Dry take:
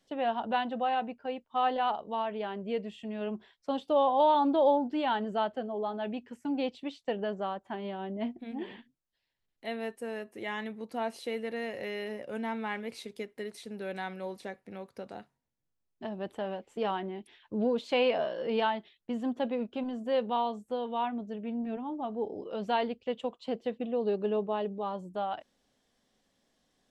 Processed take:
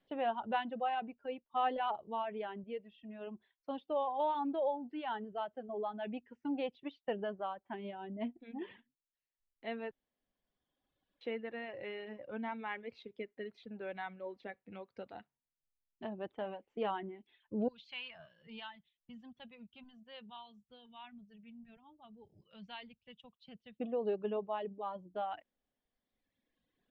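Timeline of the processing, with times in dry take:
2.64–5.69 gain -4.5 dB
9.91–11.21 room tone
14.49–16.05 high shelf 2800 Hz +7.5 dB
17.68–23.8 EQ curve 160 Hz 0 dB, 300 Hz -21 dB, 510 Hz -23 dB, 6300 Hz +5 dB
whole clip: LPF 3300 Hz 24 dB/oct; reverb removal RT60 1.9 s; gain -4 dB

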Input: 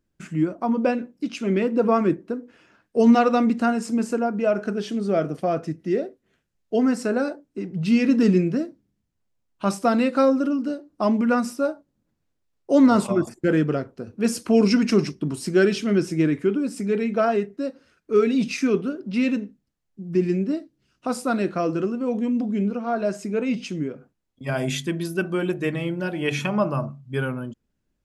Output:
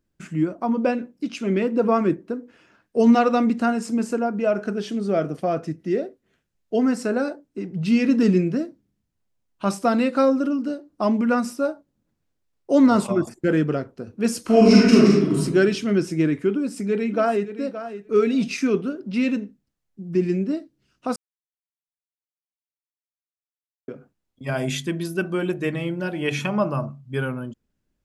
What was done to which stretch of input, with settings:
14.41–15.38 reverb throw, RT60 1 s, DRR -5.5 dB
16.51–17.51 echo throw 0.57 s, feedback 10%, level -12 dB
21.16–23.88 mute

